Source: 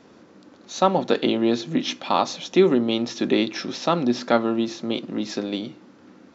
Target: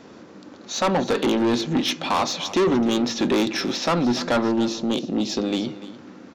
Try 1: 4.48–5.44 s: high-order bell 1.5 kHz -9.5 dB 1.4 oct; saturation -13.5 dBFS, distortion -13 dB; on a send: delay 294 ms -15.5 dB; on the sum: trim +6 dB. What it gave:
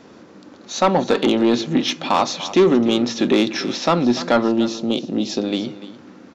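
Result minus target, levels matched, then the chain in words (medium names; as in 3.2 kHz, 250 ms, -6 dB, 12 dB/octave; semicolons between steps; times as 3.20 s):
saturation: distortion -7 dB
4.48–5.44 s: high-order bell 1.5 kHz -9.5 dB 1.4 oct; saturation -22 dBFS, distortion -6 dB; on a send: delay 294 ms -15.5 dB; on the sum: trim +6 dB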